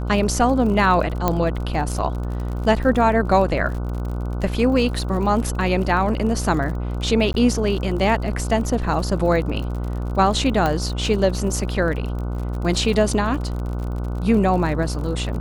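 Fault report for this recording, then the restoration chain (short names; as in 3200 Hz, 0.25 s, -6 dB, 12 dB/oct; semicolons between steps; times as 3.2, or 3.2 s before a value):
buzz 60 Hz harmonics 25 -25 dBFS
crackle 47/s -29 dBFS
1.28 pop -5 dBFS
7.33–7.34 gap 11 ms
10.66 pop -9 dBFS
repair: de-click; de-hum 60 Hz, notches 25; interpolate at 7.33, 11 ms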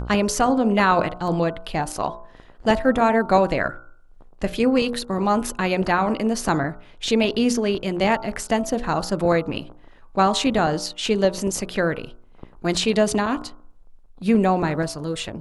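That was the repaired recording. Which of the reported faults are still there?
1.28 pop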